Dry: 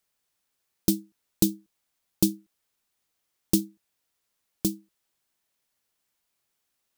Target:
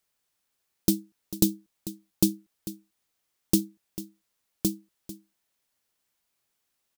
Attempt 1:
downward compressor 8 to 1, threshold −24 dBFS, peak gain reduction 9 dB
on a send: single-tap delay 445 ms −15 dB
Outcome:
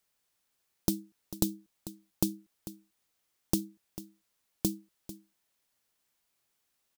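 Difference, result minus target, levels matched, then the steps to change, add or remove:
downward compressor: peak gain reduction +9 dB
remove: downward compressor 8 to 1, threshold −24 dBFS, peak gain reduction 9 dB

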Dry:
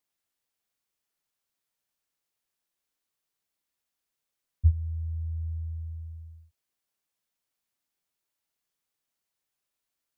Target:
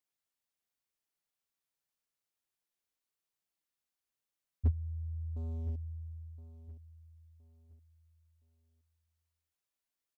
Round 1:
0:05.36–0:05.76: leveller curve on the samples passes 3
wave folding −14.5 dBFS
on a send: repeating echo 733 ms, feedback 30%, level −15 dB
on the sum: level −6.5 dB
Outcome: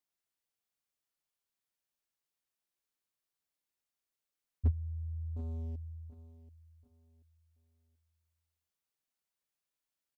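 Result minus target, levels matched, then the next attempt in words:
echo 285 ms early
0:05.36–0:05.76: leveller curve on the samples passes 3
wave folding −14.5 dBFS
on a send: repeating echo 1,018 ms, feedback 30%, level −15 dB
on the sum: level −6.5 dB

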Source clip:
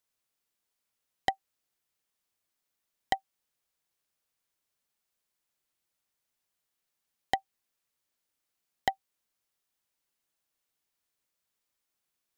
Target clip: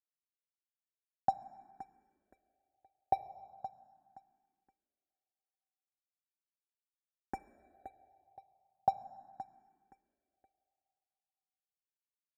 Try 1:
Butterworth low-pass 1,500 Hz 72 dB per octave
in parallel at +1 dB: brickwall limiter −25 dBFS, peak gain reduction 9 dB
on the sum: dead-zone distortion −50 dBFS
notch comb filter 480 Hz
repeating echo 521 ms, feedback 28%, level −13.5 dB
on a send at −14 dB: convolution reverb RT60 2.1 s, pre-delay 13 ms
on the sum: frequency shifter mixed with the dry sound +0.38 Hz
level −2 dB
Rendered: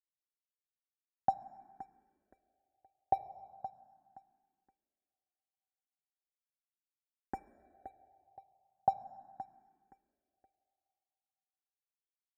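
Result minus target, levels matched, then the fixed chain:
dead-zone distortion: distortion −6 dB
Butterworth low-pass 1,500 Hz 72 dB per octave
in parallel at +1 dB: brickwall limiter −25 dBFS, peak gain reduction 9 dB
on the sum: dead-zone distortion −42.5 dBFS
notch comb filter 480 Hz
repeating echo 521 ms, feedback 28%, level −13.5 dB
on a send at −14 dB: convolution reverb RT60 2.1 s, pre-delay 13 ms
on the sum: frequency shifter mixed with the dry sound +0.38 Hz
level −2 dB

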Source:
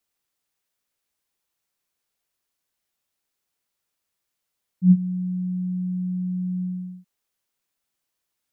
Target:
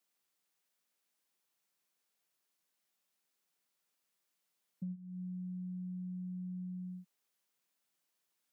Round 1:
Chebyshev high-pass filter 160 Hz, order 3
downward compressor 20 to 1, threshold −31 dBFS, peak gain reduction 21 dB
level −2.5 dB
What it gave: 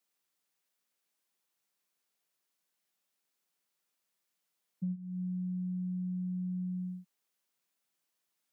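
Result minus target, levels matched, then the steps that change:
downward compressor: peak gain reduction −6 dB
change: downward compressor 20 to 1, threshold −37.5 dBFS, peak gain reduction 27.5 dB

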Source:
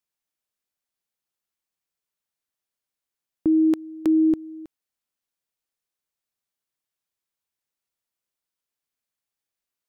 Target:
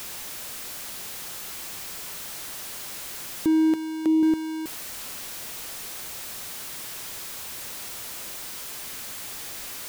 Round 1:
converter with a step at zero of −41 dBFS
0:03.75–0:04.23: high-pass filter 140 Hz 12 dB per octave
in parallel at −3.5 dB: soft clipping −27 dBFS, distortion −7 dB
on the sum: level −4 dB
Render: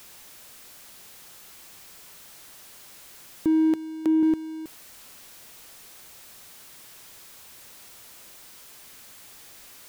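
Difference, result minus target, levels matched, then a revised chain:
converter with a step at zero: distortion −11 dB
converter with a step at zero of −29.5 dBFS
0:03.75–0:04.23: high-pass filter 140 Hz 12 dB per octave
in parallel at −3.5 dB: soft clipping −27 dBFS, distortion −3 dB
on the sum: level −4 dB

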